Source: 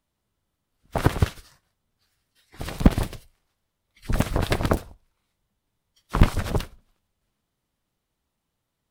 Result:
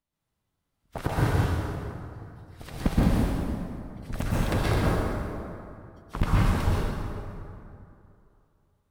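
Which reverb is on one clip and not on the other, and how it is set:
dense smooth reverb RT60 2.7 s, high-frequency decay 0.55×, pre-delay 110 ms, DRR −8 dB
level −10 dB

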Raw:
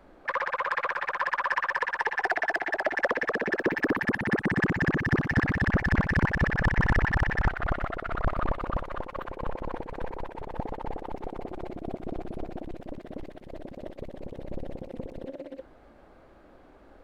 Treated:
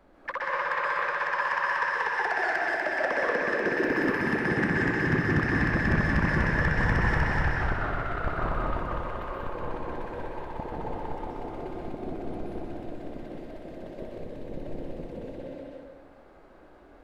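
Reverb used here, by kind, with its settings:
dense smooth reverb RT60 1.4 s, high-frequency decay 0.75×, pre-delay 120 ms, DRR −4.5 dB
level −4.5 dB

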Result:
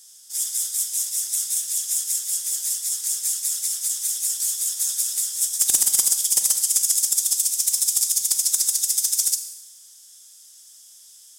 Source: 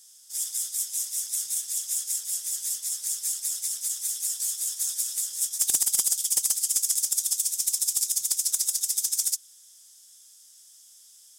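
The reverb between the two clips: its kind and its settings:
four-comb reverb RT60 0.94 s, combs from 32 ms, DRR 8.5 dB
level +4.5 dB

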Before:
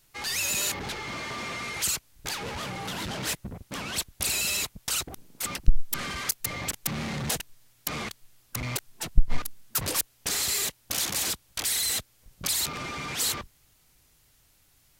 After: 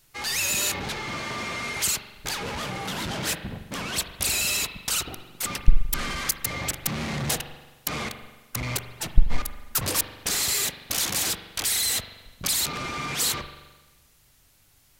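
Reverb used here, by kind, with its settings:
spring reverb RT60 1.2 s, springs 42 ms, chirp 35 ms, DRR 8 dB
level +2.5 dB

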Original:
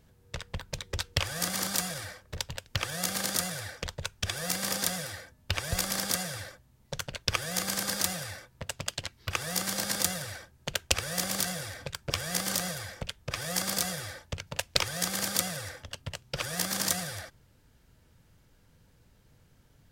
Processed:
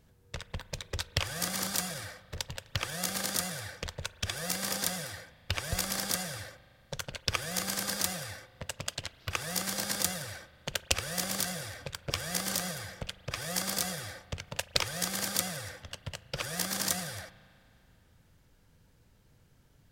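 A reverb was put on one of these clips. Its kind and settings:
spring reverb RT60 2.7 s, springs 37 ms, chirp 20 ms, DRR 16.5 dB
level −2 dB

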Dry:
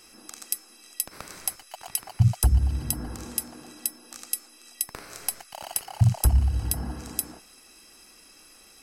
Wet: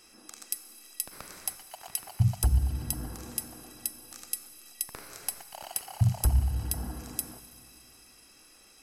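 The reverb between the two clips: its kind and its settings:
four-comb reverb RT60 3 s, combs from 32 ms, DRR 11.5 dB
level −4.5 dB

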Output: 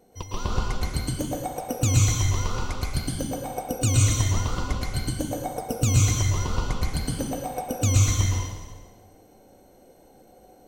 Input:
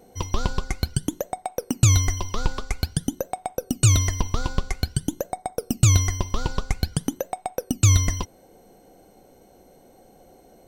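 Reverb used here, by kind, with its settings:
dense smooth reverb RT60 1.4 s, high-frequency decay 0.9×, pre-delay 100 ms, DRR −5 dB
level −7 dB

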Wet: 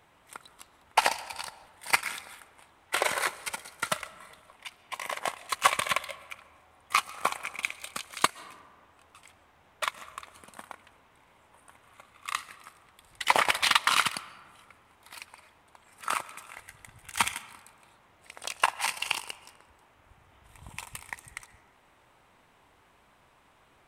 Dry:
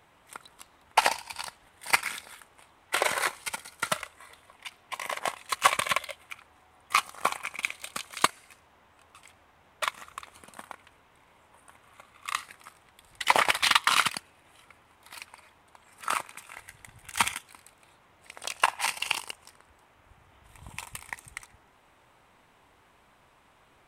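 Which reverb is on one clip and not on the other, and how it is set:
comb and all-pass reverb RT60 1.8 s, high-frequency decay 0.4×, pre-delay 95 ms, DRR 18.5 dB
level −1 dB

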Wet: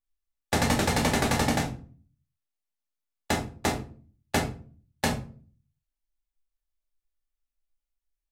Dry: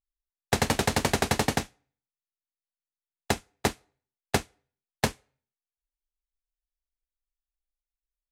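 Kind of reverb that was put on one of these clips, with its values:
rectangular room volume 280 cubic metres, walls furnished, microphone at 2.4 metres
level −3.5 dB

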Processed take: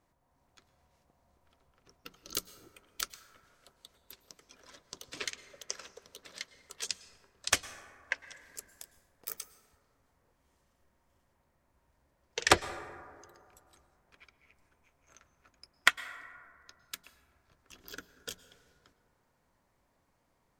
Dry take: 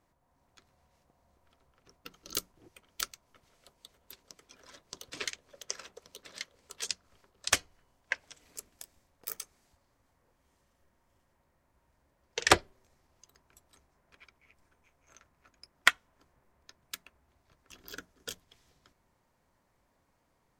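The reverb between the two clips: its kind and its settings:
dense smooth reverb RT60 2.2 s, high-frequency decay 0.3×, pre-delay 95 ms, DRR 14.5 dB
level −1 dB

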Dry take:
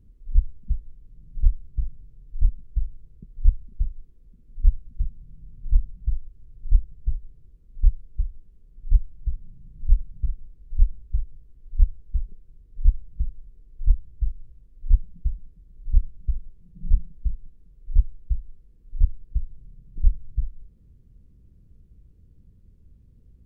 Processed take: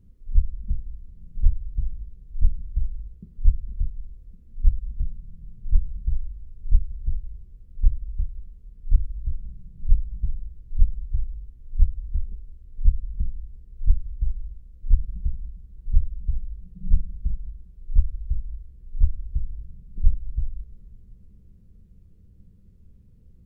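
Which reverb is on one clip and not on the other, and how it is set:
coupled-rooms reverb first 0.31 s, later 2.7 s, from −16 dB, DRR 4 dB

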